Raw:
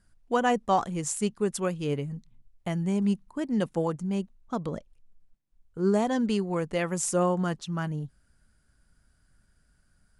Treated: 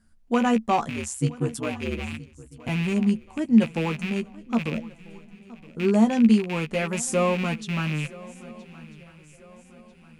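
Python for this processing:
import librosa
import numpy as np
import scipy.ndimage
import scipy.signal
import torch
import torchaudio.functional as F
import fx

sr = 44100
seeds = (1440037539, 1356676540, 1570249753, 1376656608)

y = fx.rattle_buzz(x, sr, strikes_db=-35.0, level_db=-23.0)
y = fx.peak_eq(y, sr, hz=220.0, db=11.5, octaves=0.27)
y = fx.ring_mod(y, sr, carrier_hz=65.0, at=(0.88, 2.69))
y = fx.doubler(y, sr, ms=13.0, db=-6)
y = fx.echo_swing(y, sr, ms=1293, ratio=3, feedback_pct=40, wet_db=-20.5)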